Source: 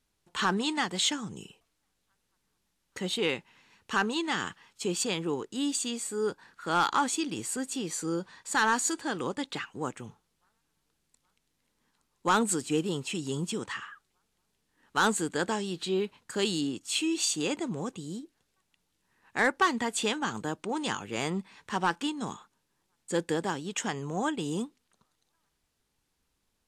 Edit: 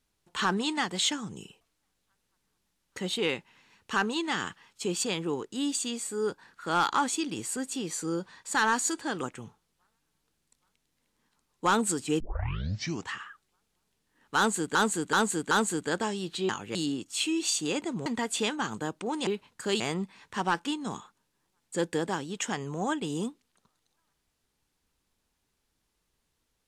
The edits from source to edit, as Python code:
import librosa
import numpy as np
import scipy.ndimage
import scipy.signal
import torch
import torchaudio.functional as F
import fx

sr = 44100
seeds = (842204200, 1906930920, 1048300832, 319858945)

y = fx.edit(x, sr, fx.cut(start_s=9.23, length_s=0.62),
    fx.tape_start(start_s=12.82, length_s=0.92),
    fx.repeat(start_s=14.99, length_s=0.38, count=4),
    fx.swap(start_s=15.97, length_s=0.53, other_s=20.9, other_length_s=0.26),
    fx.cut(start_s=17.81, length_s=1.88), tone=tone)